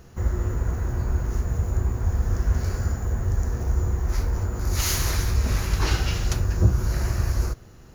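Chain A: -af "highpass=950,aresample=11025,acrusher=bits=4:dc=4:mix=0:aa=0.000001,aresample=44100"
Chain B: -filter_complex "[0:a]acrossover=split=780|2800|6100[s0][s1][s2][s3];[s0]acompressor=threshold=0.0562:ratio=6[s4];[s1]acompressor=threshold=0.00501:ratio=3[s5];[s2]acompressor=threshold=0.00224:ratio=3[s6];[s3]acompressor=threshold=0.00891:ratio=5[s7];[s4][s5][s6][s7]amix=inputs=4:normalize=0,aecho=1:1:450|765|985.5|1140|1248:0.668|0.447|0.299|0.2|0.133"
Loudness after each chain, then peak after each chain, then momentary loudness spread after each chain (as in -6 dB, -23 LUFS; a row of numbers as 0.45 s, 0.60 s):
-42.0 LUFS, -29.0 LUFS; -19.0 dBFS, -14.5 dBFS; 14 LU, 2 LU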